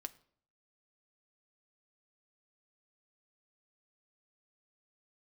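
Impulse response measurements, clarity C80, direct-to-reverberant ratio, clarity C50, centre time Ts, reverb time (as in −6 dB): 22.5 dB, 8.5 dB, 20.0 dB, 3 ms, 0.60 s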